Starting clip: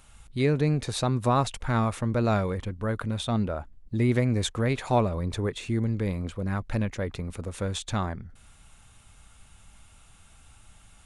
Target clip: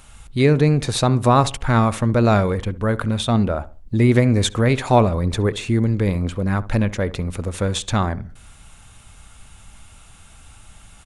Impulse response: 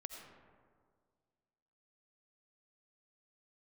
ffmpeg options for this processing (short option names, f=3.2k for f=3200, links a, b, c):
-filter_complex "[0:a]asplit=2[a][b];[b]adelay=68,lowpass=f=1.3k:p=1,volume=-16dB,asplit=2[c][d];[d]adelay=68,lowpass=f=1.3k:p=1,volume=0.33,asplit=2[e][f];[f]adelay=68,lowpass=f=1.3k:p=1,volume=0.33[g];[a][c][e][g]amix=inputs=4:normalize=0,volume=8.5dB"